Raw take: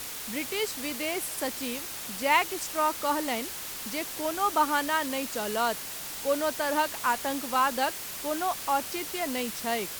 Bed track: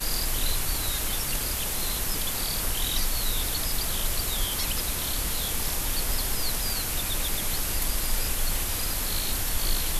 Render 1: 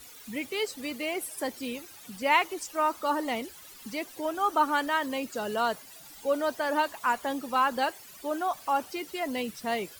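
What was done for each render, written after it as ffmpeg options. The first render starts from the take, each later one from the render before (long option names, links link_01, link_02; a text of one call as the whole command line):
ffmpeg -i in.wav -af "afftdn=noise_reduction=15:noise_floor=-38" out.wav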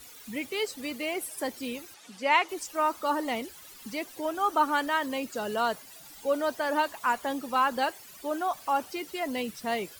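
ffmpeg -i in.wav -filter_complex "[0:a]asettb=1/sr,asplit=3[link_01][link_02][link_03];[link_01]atrim=end=1.944[link_04];[link_02]atrim=start=1.94:end=2.49,asetpts=PTS-STARTPTS,afade=type=in:duration=0.004:curve=qsin,afade=type=out:start_time=0.546:duration=0.004:curve=qsin,highpass=260,lowpass=7700[link_05];[link_03]atrim=start=2.486[link_06];[link_04][link_05]acrossfade=duration=0.004:curve1=hsin:curve2=qsin[link_07];[link_07][link_06]acrossfade=duration=0.004:curve1=qsin:curve2=hsin" out.wav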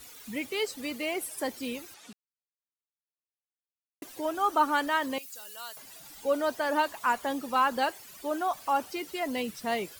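ffmpeg -i in.wav -filter_complex "[0:a]asettb=1/sr,asplit=3[link_01][link_02][link_03];[link_01]atrim=end=5.184[link_04];[link_02]atrim=start=5.18:end=5.77,asetpts=PTS-STARTPTS,afade=type=in:duration=0.004:curve=qsin,afade=type=out:start_time=0.586:duration=0.004:curve=qsin,aderivative[link_05];[link_03]atrim=start=5.766[link_06];[link_04][link_05]acrossfade=duration=0.004:curve1=hsin:curve2=qsin[link_07];[link_07][link_06]acrossfade=duration=0.004:curve1=qsin:curve2=hsin,asplit=3[link_08][link_09][link_10];[link_08]atrim=end=2.13,asetpts=PTS-STARTPTS,afade=type=out:start_time=2.126:duration=0.004:curve=hsin[link_11];[link_09]atrim=start=2.13:end=4.02,asetpts=PTS-STARTPTS,volume=0[link_12];[link_10]atrim=start=4.02,asetpts=PTS-STARTPTS,afade=type=in:duration=0.004:curve=hsin[link_13];[link_11][link_12][link_13]concat=n=3:v=0:a=1" out.wav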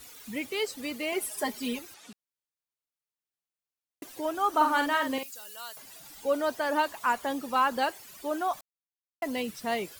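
ffmpeg -i in.wav -filter_complex "[0:a]asettb=1/sr,asplit=3[link_01][link_02][link_03];[link_01]atrim=end=1.124[link_04];[link_02]atrim=start=1.12:end=1.79,asetpts=PTS-STARTPTS,afade=type=in:duration=0.004:curve=qsin,afade=type=out:start_time=0.666:duration=0.004:curve=qsin,aecho=1:1:4.8:0.89,atrim=end_sample=29547[link_05];[link_03]atrim=start=1.786[link_06];[link_04][link_05]acrossfade=duration=0.004:curve1=hsin:curve2=qsin[link_07];[link_07][link_06]acrossfade=duration=0.004:curve1=qsin:curve2=hsin,asettb=1/sr,asplit=3[link_08][link_09][link_10];[link_08]atrim=end=4.494[link_11];[link_09]atrim=start=4.49:end=5.31,asetpts=PTS-STARTPTS,afade=type=in:duration=0.004:curve=qsin,afade=type=out:start_time=0.816:duration=0.004:curve=qsin,asplit=2[link_12][link_13];[link_13]adelay=49,volume=-5dB[link_14];[link_12][link_14]amix=inputs=2:normalize=0,atrim=end_sample=36162[link_15];[link_10]atrim=start=5.306[link_16];[link_11][link_15]acrossfade=duration=0.004:curve1=hsin:curve2=qsin[link_17];[link_17][link_16]acrossfade=duration=0.004:curve1=qsin:curve2=hsin,asplit=3[link_18][link_19][link_20];[link_18]atrim=end=8.61,asetpts=PTS-STARTPTS,afade=type=out:start_time=8.606:duration=0.004:curve=hsin[link_21];[link_19]atrim=start=8.61:end=9.22,asetpts=PTS-STARTPTS,volume=0[link_22];[link_20]atrim=start=9.22,asetpts=PTS-STARTPTS,afade=type=in:duration=0.004:curve=hsin[link_23];[link_21][link_22][link_23]concat=n=3:v=0:a=1" out.wav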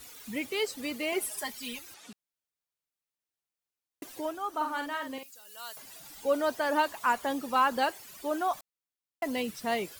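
ffmpeg -i in.wav -filter_complex "[0:a]asettb=1/sr,asplit=3[link_01][link_02][link_03];[link_01]atrim=end=1.394[link_04];[link_02]atrim=start=1.39:end=1.87,asetpts=PTS-STARTPTS,afade=type=in:duration=0.004:curve=qsin,afade=type=out:start_time=0.476:duration=0.004:curve=qsin,equalizer=frequency=360:width=0.49:gain=-12.5[link_05];[link_03]atrim=start=1.866[link_06];[link_04][link_05]acrossfade=duration=0.004:curve1=hsin:curve2=qsin[link_07];[link_07][link_06]acrossfade=duration=0.004:curve1=qsin:curve2=hsin,asplit=3[link_08][link_09][link_10];[link_08]atrim=end=4.4,asetpts=PTS-STARTPTS,afade=type=out:start_time=4.15:duration=0.25:silence=0.398107[link_11];[link_09]atrim=start=4.4:end=5.44,asetpts=PTS-STARTPTS,volume=-8dB[link_12];[link_10]atrim=start=5.44,asetpts=PTS-STARTPTS,afade=type=in:duration=0.25:silence=0.398107[link_13];[link_11][link_12][link_13]concat=n=3:v=0:a=1" out.wav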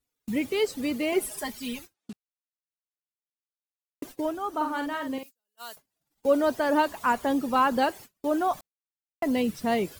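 ffmpeg -i in.wav -af "lowshelf=frequency=480:gain=11.5,agate=range=-37dB:threshold=-42dB:ratio=16:detection=peak" out.wav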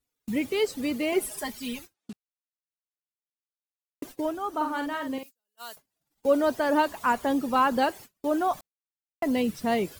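ffmpeg -i in.wav -af anull out.wav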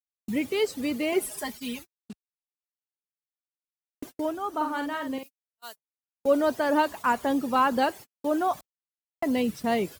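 ffmpeg -i in.wav -af "highpass=49,agate=range=-36dB:threshold=-40dB:ratio=16:detection=peak" out.wav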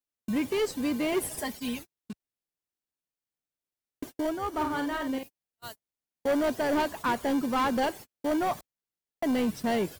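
ffmpeg -i in.wav -filter_complex "[0:a]asplit=2[link_01][link_02];[link_02]acrusher=samples=34:mix=1:aa=0.000001,volume=-9.5dB[link_03];[link_01][link_03]amix=inputs=2:normalize=0,asoftclip=type=tanh:threshold=-21.5dB" out.wav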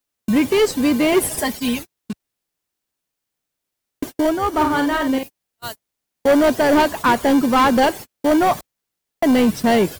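ffmpeg -i in.wav -af "volume=12dB" out.wav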